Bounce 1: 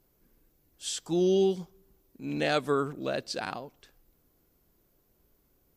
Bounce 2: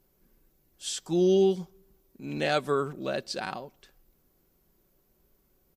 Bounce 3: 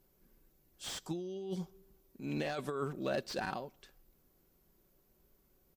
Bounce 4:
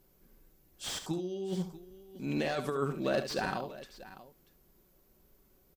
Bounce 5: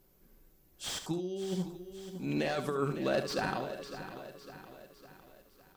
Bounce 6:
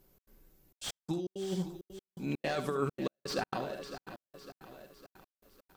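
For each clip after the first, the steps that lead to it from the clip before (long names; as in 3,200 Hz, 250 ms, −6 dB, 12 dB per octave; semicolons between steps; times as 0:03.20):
comb filter 5.3 ms, depth 31%
compressor whose output falls as the input rises −30 dBFS, ratio −1; slew-rate limiting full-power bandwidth 95 Hz; level −6.5 dB
multi-tap delay 72/638 ms −9.5/−16.5 dB; level +4 dB
feedback echo at a low word length 555 ms, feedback 55%, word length 10 bits, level −12 dB
gate pattern "xx.xxxxx.x.." 166 BPM −60 dB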